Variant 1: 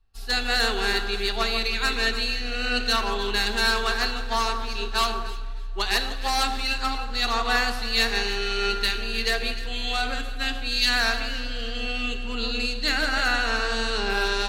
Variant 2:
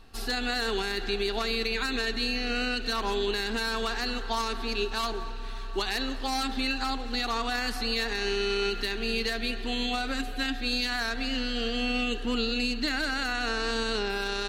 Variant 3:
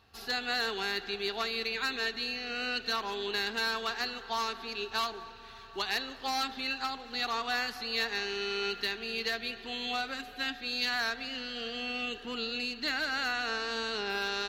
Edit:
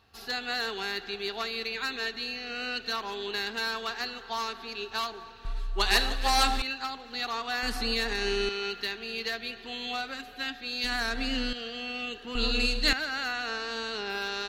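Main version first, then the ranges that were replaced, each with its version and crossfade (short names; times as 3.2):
3
5.45–6.62 from 1
7.63–8.49 from 2
10.84–11.53 from 2
12.35–12.93 from 1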